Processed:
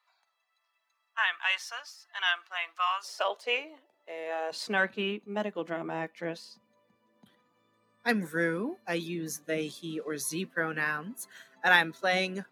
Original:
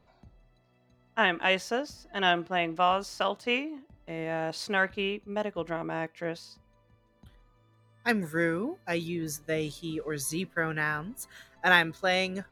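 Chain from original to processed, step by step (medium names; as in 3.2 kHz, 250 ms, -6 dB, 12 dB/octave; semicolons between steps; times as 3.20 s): coarse spectral quantiser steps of 15 dB; Chebyshev high-pass 1.1 kHz, order 3, from 3.03 s 470 Hz, from 4.51 s 190 Hz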